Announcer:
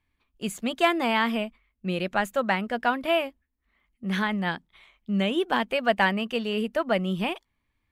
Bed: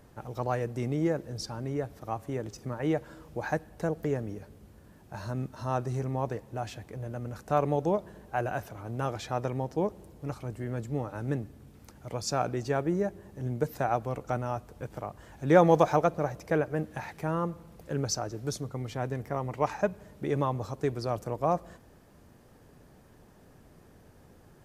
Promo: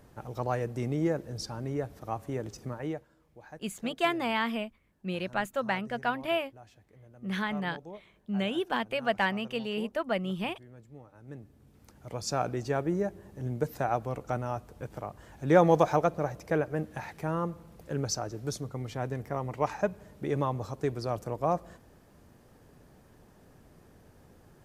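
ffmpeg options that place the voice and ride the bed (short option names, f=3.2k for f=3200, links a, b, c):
-filter_complex "[0:a]adelay=3200,volume=-5.5dB[a];[1:a]volume=16dB,afade=t=out:st=2.63:d=0.45:silence=0.141254,afade=t=in:st=11.22:d=1.11:silence=0.149624[b];[a][b]amix=inputs=2:normalize=0"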